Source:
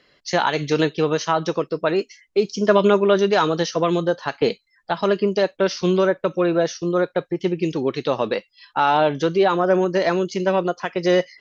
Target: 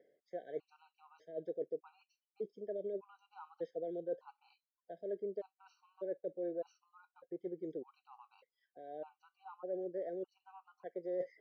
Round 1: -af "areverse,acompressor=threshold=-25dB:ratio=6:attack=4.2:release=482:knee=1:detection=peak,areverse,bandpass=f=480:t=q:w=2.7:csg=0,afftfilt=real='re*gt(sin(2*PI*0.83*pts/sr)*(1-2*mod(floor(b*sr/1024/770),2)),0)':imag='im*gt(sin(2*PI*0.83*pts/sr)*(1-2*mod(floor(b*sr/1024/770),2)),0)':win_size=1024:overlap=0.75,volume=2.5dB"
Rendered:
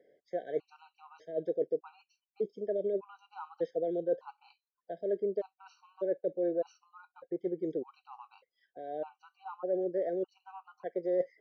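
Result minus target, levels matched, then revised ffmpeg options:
compressor: peak gain reduction -8.5 dB
-af "areverse,acompressor=threshold=-35dB:ratio=6:attack=4.2:release=482:knee=1:detection=peak,areverse,bandpass=f=480:t=q:w=2.7:csg=0,afftfilt=real='re*gt(sin(2*PI*0.83*pts/sr)*(1-2*mod(floor(b*sr/1024/770),2)),0)':imag='im*gt(sin(2*PI*0.83*pts/sr)*(1-2*mod(floor(b*sr/1024/770),2)),0)':win_size=1024:overlap=0.75,volume=2.5dB"

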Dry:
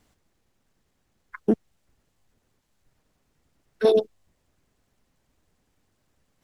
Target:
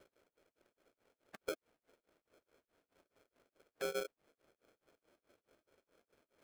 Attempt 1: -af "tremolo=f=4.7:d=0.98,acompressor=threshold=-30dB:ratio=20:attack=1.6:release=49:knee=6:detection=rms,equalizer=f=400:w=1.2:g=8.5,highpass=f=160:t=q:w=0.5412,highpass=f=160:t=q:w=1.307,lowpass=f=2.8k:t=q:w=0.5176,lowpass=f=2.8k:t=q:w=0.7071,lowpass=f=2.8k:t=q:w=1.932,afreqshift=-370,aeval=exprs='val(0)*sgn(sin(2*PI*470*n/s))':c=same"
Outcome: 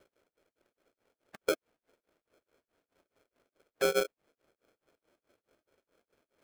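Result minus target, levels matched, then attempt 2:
compressor: peak gain reduction -11.5 dB
-af "tremolo=f=4.7:d=0.98,acompressor=threshold=-42dB:ratio=20:attack=1.6:release=49:knee=6:detection=rms,equalizer=f=400:w=1.2:g=8.5,highpass=f=160:t=q:w=0.5412,highpass=f=160:t=q:w=1.307,lowpass=f=2.8k:t=q:w=0.5176,lowpass=f=2.8k:t=q:w=0.7071,lowpass=f=2.8k:t=q:w=1.932,afreqshift=-370,aeval=exprs='val(0)*sgn(sin(2*PI*470*n/s))':c=same"

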